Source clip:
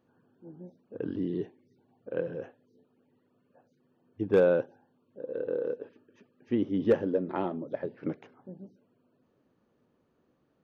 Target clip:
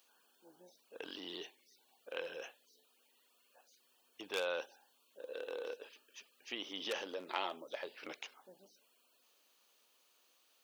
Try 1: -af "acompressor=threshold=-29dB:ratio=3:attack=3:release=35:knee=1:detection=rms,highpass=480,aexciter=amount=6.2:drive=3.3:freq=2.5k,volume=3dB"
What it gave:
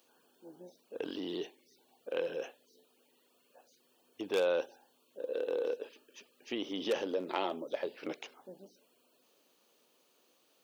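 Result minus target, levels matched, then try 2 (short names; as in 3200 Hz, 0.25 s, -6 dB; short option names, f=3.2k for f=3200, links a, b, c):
1000 Hz band -3.0 dB
-af "acompressor=threshold=-29dB:ratio=3:attack=3:release=35:knee=1:detection=rms,highpass=980,aexciter=amount=6.2:drive=3.3:freq=2.5k,volume=3dB"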